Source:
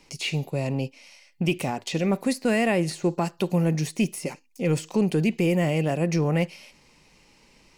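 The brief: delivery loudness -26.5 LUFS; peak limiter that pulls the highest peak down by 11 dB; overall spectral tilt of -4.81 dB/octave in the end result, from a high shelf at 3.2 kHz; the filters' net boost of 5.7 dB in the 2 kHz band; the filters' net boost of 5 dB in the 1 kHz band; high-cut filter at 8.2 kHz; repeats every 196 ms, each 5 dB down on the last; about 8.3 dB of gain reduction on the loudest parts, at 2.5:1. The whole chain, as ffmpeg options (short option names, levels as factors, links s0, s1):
-af "lowpass=8200,equalizer=f=1000:t=o:g=6,equalizer=f=2000:t=o:g=4,highshelf=f=3200:g=4.5,acompressor=threshold=0.0316:ratio=2.5,alimiter=level_in=1.41:limit=0.0631:level=0:latency=1,volume=0.708,aecho=1:1:196|392|588|784|980|1176|1372:0.562|0.315|0.176|0.0988|0.0553|0.031|0.0173,volume=2.66"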